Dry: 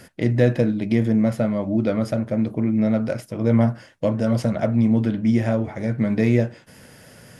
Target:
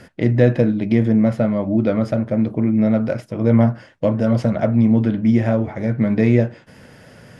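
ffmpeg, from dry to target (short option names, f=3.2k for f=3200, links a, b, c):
-af "aemphasis=mode=reproduction:type=50fm,volume=3dB"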